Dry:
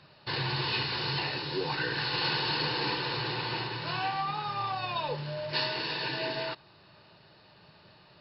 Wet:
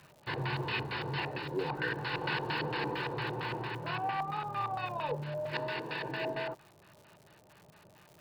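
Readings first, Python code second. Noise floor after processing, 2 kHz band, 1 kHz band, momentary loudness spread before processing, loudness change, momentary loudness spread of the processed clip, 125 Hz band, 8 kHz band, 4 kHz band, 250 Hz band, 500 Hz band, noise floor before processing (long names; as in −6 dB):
−61 dBFS, −3.0 dB, −2.5 dB, 5 LU, −4.5 dB, 4 LU, −2.0 dB, can't be measured, −11.0 dB, −1.5 dB, −1.0 dB, −58 dBFS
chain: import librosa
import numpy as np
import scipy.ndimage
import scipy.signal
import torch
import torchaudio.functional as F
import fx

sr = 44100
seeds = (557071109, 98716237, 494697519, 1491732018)

y = fx.filter_lfo_lowpass(x, sr, shape='square', hz=4.4, low_hz=700.0, high_hz=2300.0, q=1.2)
y = fx.dmg_crackle(y, sr, seeds[0], per_s=180.0, level_db=-45.0)
y = y * 10.0 ** (-2.0 / 20.0)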